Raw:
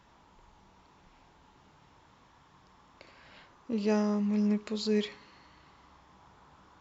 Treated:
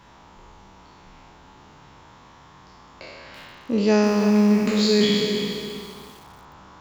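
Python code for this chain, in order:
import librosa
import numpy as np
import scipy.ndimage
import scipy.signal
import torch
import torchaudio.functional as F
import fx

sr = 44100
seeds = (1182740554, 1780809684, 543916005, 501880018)

y = fx.spec_trails(x, sr, decay_s=1.96)
y = fx.echo_crushed(y, sr, ms=333, feedback_pct=35, bits=8, wet_db=-8.0)
y = y * 10.0 ** (8.5 / 20.0)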